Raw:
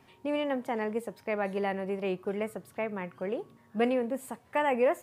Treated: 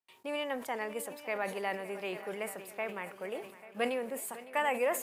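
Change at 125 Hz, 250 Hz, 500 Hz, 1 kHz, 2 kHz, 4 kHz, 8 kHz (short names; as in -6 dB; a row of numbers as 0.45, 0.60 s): -11.0 dB, -9.5 dB, -5.0 dB, -2.5 dB, +0.5 dB, +1.5 dB, n/a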